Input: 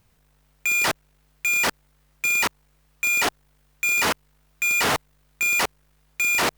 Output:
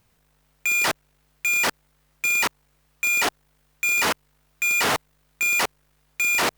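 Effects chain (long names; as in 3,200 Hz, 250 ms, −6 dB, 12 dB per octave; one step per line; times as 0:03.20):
low-shelf EQ 130 Hz −5.5 dB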